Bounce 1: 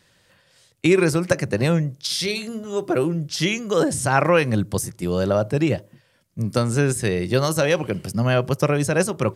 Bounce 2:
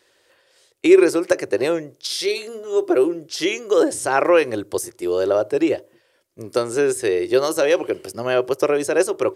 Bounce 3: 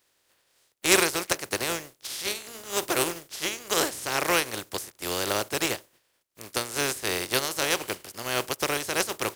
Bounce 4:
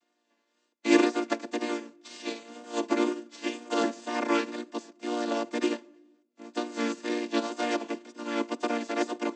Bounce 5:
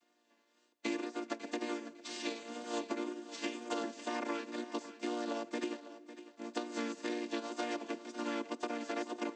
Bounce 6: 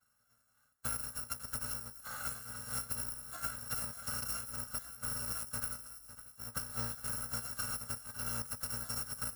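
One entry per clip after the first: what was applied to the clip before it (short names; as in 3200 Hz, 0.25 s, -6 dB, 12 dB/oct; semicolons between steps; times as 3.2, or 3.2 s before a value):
resonant low shelf 260 Hz -12 dB, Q 3; gain -1 dB
spectral contrast lowered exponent 0.36; gain -9 dB
chord vocoder major triad, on A#3; vibrato 2 Hz 34 cents; on a send at -21 dB: reverb RT60 0.90 s, pre-delay 4 ms
compressor 16:1, threshold -35 dBFS, peak gain reduction 21 dB; thinning echo 0.552 s, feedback 25%, high-pass 170 Hz, level -14 dB; gain +1 dB
FFT order left unsorted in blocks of 128 samples; resonant high shelf 2000 Hz -7.5 dB, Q 3; thin delay 0.164 s, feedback 72%, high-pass 4700 Hz, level -15.5 dB; gain +5.5 dB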